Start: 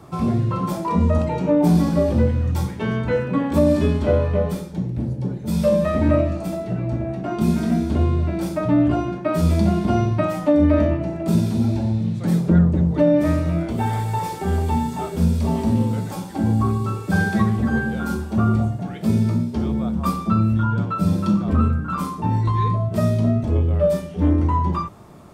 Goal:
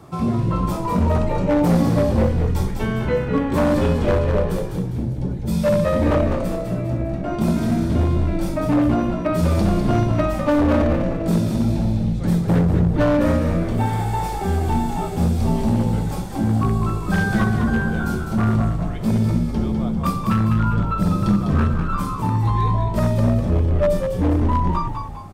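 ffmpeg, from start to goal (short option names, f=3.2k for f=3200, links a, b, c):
-filter_complex "[0:a]aeval=exprs='0.266*(abs(mod(val(0)/0.266+3,4)-2)-1)':c=same,asplit=6[a][b][c][d][e][f];[b]adelay=201,afreqshift=-59,volume=-6dB[g];[c]adelay=402,afreqshift=-118,volume=-13.3dB[h];[d]adelay=603,afreqshift=-177,volume=-20.7dB[i];[e]adelay=804,afreqshift=-236,volume=-28dB[j];[f]adelay=1005,afreqshift=-295,volume=-35.3dB[k];[a][g][h][i][j][k]amix=inputs=6:normalize=0"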